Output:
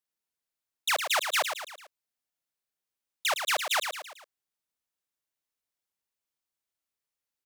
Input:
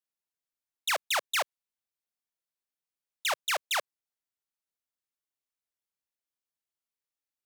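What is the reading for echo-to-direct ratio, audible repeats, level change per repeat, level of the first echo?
-6.0 dB, 4, -6.0 dB, -7.0 dB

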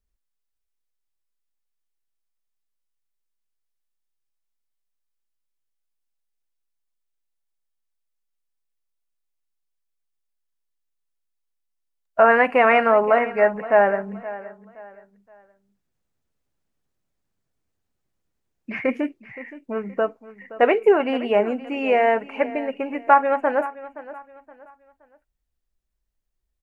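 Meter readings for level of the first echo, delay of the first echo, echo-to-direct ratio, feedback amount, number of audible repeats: -16.5 dB, 0.521 s, -16.0 dB, 33%, 2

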